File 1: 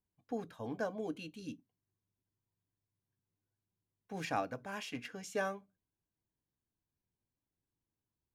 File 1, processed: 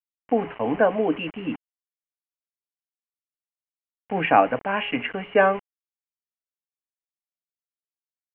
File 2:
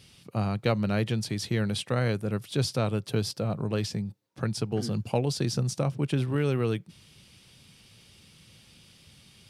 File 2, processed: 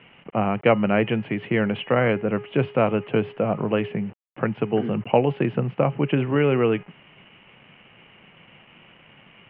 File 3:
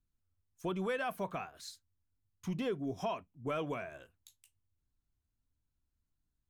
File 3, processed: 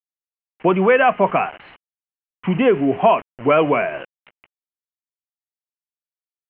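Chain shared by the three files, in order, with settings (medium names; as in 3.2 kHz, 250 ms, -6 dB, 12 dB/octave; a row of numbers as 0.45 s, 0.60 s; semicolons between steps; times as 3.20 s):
Bessel high-pass 190 Hz, order 6; de-hum 414.2 Hz, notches 21; bit crusher 9-bit; rippled Chebyshev low-pass 3 kHz, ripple 3 dB; peak normalisation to -3 dBFS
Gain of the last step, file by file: +20.0 dB, +11.5 dB, +23.5 dB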